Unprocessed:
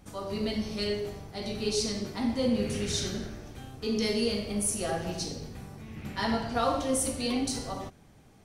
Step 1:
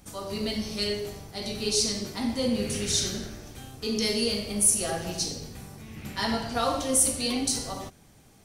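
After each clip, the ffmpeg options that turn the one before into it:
ffmpeg -i in.wav -af "highshelf=frequency=4000:gain=10.5" out.wav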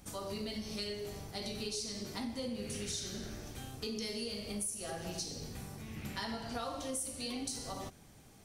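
ffmpeg -i in.wav -af "acompressor=threshold=-35dB:ratio=5,volume=-2.5dB" out.wav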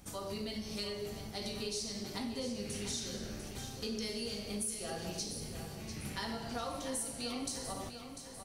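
ffmpeg -i in.wav -af "aecho=1:1:696|1392|2088|2784|3480|4176:0.316|0.168|0.0888|0.0471|0.025|0.0132" out.wav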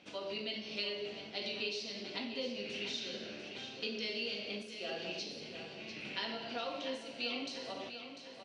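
ffmpeg -i in.wav -af "highpass=360,equalizer=frequency=440:width_type=q:width=4:gain=-3,equalizer=frequency=830:width_type=q:width=4:gain=-8,equalizer=frequency=1200:width_type=q:width=4:gain=-9,equalizer=frequency=1800:width_type=q:width=4:gain=-4,equalizer=frequency=2700:width_type=q:width=4:gain=8,lowpass=frequency=4100:width=0.5412,lowpass=frequency=4100:width=1.3066,volume=4dB" out.wav

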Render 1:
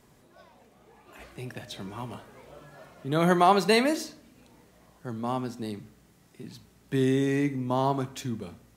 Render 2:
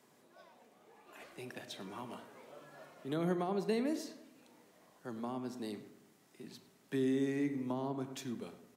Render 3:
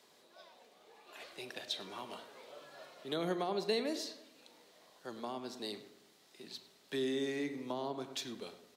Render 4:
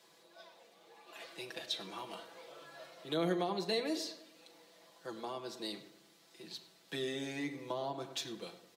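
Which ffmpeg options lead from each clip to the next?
ffmpeg -i in.wav -filter_complex "[0:a]highpass=230,acrossover=split=390[link_01][link_02];[link_02]acompressor=threshold=-37dB:ratio=6[link_03];[link_01][link_03]amix=inputs=2:normalize=0,asplit=2[link_04][link_05];[link_05]adelay=103,lowpass=frequency=2000:poles=1,volume=-12dB,asplit=2[link_06][link_07];[link_07]adelay=103,lowpass=frequency=2000:poles=1,volume=0.5,asplit=2[link_08][link_09];[link_09]adelay=103,lowpass=frequency=2000:poles=1,volume=0.5,asplit=2[link_10][link_11];[link_11]adelay=103,lowpass=frequency=2000:poles=1,volume=0.5,asplit=2[link_12][link_13];[link_13]adelay=103,lowpass=frequency=2000:poles=1,volume=0.5[link_14];[link_04][link_06][link_08][link_10][link_12][link_14]amix=inputs=6:normalize=0,volume=-5dB" out.wav
ffmpeg -i in.wav -af "equalizer=frequency=125:width_type=o:width=1:gain=-8,equalizer=frequency=250:width_type=o:width=1:gain=-5,equalizer=frequency=500:width_type=o:width=1:gain=3,equalizer=frequency=4000:width_type=o:width=1:gain=11" out.wav
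ffmpeg -i in.wav -af "aecho=1:1:6:0.77,volume=-1dB" out.wav

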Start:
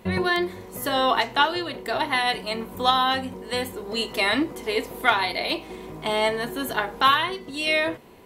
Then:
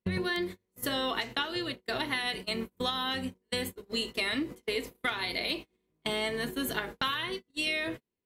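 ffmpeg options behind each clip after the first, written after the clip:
ffmpeg -i in.wav -af "agate=range=-38dB:threshold=-31dB:ratio=16:detection=peak,equalizer=frequency=840:width=1.1:gain=-10,acompressor=threshold=-28dB:ratio=6" out.wav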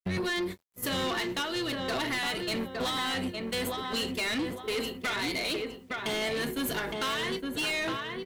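ffmpeg -i in.wav -filter_complex "[0:a]asplit=2[link_01][link_02];[link_02]adelay=863,lowpass=frequency=2200:poles=1,volume=-5.5dB,asplit=2[link_03][link_04];[link_04]adelay=863,lowpass=frequency=2200:poles=1,volume=0.34,asplit=2[link_05][link_06];[link_06]adelay=863,lowpass=frequency=2200:poles=1,volume=0.34,asplit=2[link_07][link_08];[link_08]adelay=863,lowpass=frequency=2200:poles=1,volume=0.34[link_09];[link_03][link_05][link_07][link_09]amix=inputs=4:normalize=0[link_10];[link_01][link_10]amix=inputs=2:normalize=0,acrusher=bits=11:mix=0:aa=0.000001,asoftclip=type=tanh:threshold=-32.5dB,volume=5.5dB" out.wav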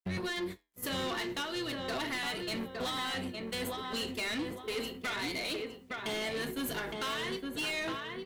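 ffmpeg -i in.wav -af "flanger=delay=9.4:depth=4.4:regen=-78:speed=0.34:shape=sinusoidal" out.wav

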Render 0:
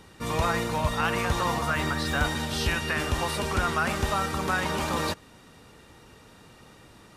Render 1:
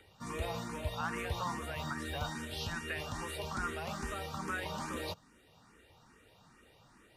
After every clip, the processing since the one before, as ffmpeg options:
ffmpeg -i in.wav -filter_complex "[0:a]acrossover=split=350|610|3100[link_01][link_02][link_03][link_04];[link_03]acompressor=mode=upward:threshold=-50dB:ratio=2.5[link_05];[link_01][link_02][link_05][link_04]amix=inputs=4:normalize=0,asplit=2[link_06][link_07];[link_07]afreqshift=2.4[link_08];[link_06][link_08]amix=inputs=2:normalize=1,volume=-8.5dB" out.wav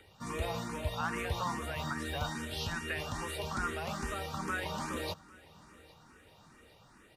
ffmpeg -i in.wav -af "aecho=1:1:807|1614|2421:0.0708|0.0326|0.015,volume=2dB" out.wav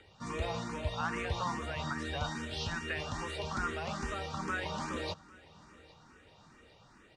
ffmpeg -i in.wav -af "lowpass=frequency=7500:width=0.5412,lowpass=frequency=7500:width=1.3066" out.wav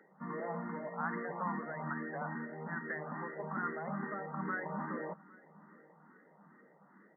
ffmpeg -i in.wav -af "afftfilt=real='re*between(b*sr/4096,150,2100)':imag='im*between(b*sr/4096,150,2100)':win_size=4096:overlap=0.75,equalizer=frequency=200:width_type=o:width=0.21:gain=8.5,volume=-2dB" out.wav

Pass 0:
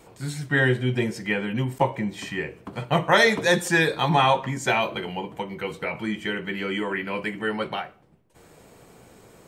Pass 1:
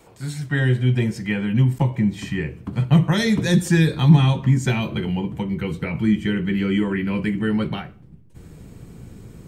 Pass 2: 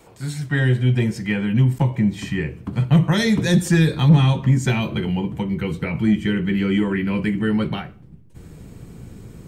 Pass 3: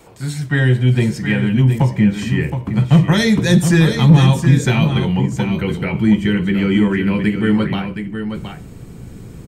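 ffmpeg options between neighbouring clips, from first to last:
ffmpeg -i in.wav -filter_complex "[0:a]acrossover=split=390|3000[link_01][link_02][link_03];[link_02]acompressor=threshold=-25dB:ratio=6[link_04];[link_01][link_04][link_03]amix=inputs=3:normalize=0,asubboost=boost=8.5:cutoff=220" out.wav
ffmpeg -i in.wav -af "asoftclip=type=tanh:threshold=-6.5dB,volume=1.5dB" out.wav
ffmpeg -i in.wav -af "aecho=1:1:719:0.398,volume=4dB" out.wav

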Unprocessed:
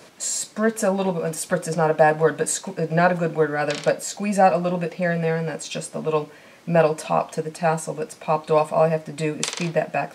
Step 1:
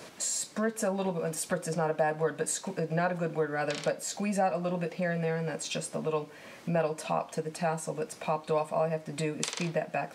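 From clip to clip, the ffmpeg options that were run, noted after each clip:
ffmpeg -i in.wav -af "acompressor=threshold=-34dB:ratio=2" out.wav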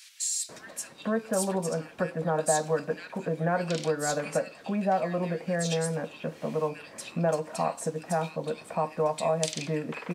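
ffmpeg -i in.wav -filter_complex "[0:a]acrossover=split=2100[link_01][link_02];[link_01]adelay=490[link_03];[link_03][link_02]amix=inputs=2:normalize=0,volume=2dB" out.wav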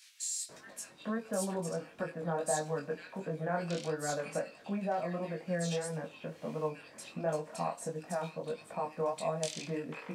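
ffmpeg -i in.wav -af "flanger=delay=19.5:depth=4.1:speed=1.5,volume=-4dB" out.wav

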